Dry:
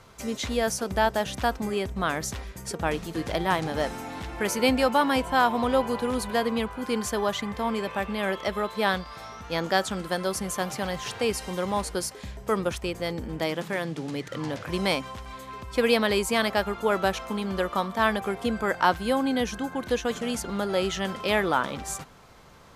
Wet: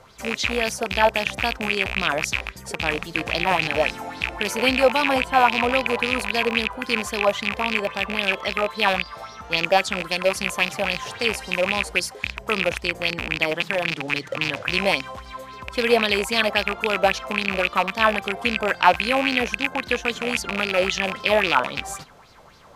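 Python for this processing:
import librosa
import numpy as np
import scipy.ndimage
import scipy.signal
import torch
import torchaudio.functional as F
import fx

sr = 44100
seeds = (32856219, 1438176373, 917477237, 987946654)

y = fx.rattle_buzz(x, sr, strikes_db=-34.0, level_db=-13.0)
y = fx.bell_lfo(y, sr, hz=3.7, low_hz=550.0, high_hz=5000.0, db=12)
y = y * 10.0 ** (-1.0 / 20.0)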